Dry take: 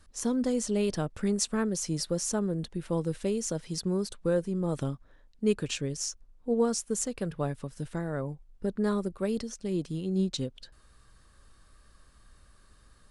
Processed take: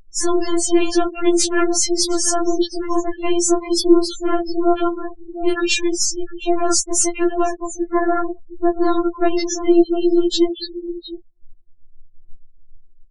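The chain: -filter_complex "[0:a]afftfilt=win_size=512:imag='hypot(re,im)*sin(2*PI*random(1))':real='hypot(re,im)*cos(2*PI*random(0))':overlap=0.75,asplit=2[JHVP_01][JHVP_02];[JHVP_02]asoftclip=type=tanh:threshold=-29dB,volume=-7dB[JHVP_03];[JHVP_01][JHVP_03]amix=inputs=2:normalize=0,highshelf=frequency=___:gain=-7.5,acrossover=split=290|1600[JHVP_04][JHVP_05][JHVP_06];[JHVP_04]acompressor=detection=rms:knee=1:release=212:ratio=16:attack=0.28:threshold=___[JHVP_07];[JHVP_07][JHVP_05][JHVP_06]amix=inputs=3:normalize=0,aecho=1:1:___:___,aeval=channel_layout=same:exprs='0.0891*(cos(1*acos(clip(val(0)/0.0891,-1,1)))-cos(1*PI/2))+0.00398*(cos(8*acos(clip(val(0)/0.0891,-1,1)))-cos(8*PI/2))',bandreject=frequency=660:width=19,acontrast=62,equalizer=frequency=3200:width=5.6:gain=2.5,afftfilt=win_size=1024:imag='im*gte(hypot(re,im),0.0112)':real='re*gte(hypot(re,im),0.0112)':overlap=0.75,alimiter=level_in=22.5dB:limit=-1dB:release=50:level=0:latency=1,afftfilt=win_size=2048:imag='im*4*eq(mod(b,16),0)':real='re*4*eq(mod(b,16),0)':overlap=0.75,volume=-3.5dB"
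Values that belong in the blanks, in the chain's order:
6500, -47dB, 711, 0.2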